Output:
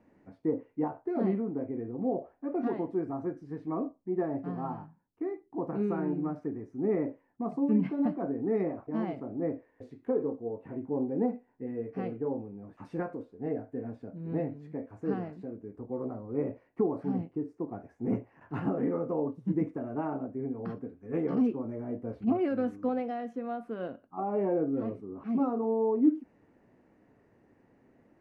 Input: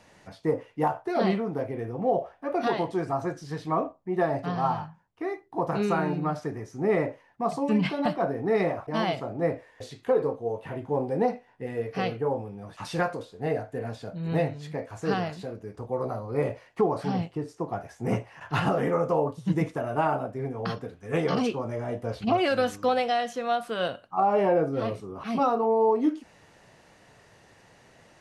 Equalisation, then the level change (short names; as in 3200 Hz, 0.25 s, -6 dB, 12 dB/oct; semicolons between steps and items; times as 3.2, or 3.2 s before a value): EQ curve 160 Hz 0 dB, 260 Hz +12 dB, 600 Hz -2 dB, 2300 Hz -8 dB, 3400 Hz -20 dB; -8.5 dB